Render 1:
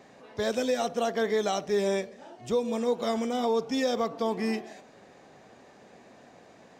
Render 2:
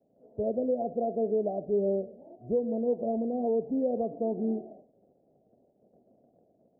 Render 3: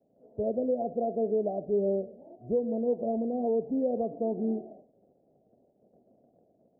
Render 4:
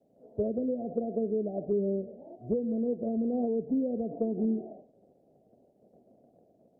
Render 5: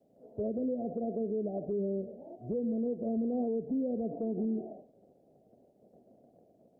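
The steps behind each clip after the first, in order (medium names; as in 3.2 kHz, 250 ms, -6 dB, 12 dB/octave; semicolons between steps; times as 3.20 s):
elliptic low-pass 670 Hz, stop band 50 dB; expander -47 dBFS
no audible change
low-pass that closes with the level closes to 340 Hz, closed at -26 dBFS; trim +2.5 dB
peak limiter -26 dBFS, peak gain reduction 8 dB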